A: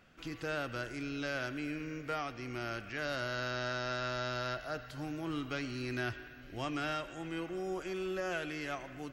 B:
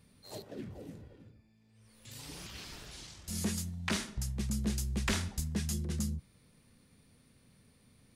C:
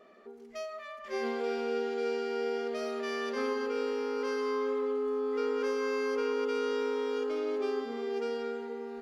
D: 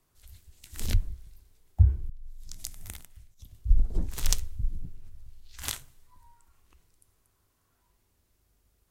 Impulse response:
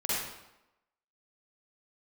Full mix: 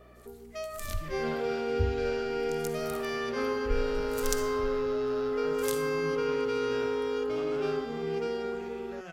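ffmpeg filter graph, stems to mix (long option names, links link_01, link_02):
-filter_complex "[0:a]equalizer=frequency=160:width=6.1:gain=14,adelay=750,volume=-12.5dB,asplit=2[link_01][link_02];[link_02]volume=-7.5dB[link_03];[2:a]aeval=exprs='val(0)+0.00126*(sin(2*PI*60*n/s)+sin(2*PI*2*60*n/s)/2+sin(2*PI*3*60*n/s)/3+sin(2*PI*4*60*n/s)/4+sin(2*PI*5*60*n/s)/5)':channel_layout=same,volume=1.5dB[link_04];[3:a]highshelf=frequency=4500:gain=9,volume=-11.5dB,asplit=2[link_05][link_06];[link_06]volume=-16dB[link_07];[4:a]atrim=start_sample=2205[link_08];[link_03][link_07]amix=inputs=2:normalize=0[link_09];[link_09][link_08]afir=irnorm=-1:irlink=0[link_10];[link_01][link_04][link_05][link_10]amix=inputs=4:normalize=0"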